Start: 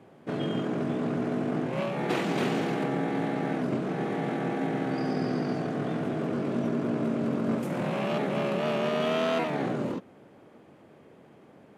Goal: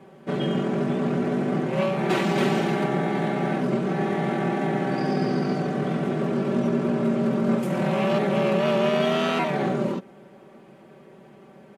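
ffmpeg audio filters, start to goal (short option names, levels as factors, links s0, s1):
-af "aecho=1:1:5.2:0.77,volume=1.41"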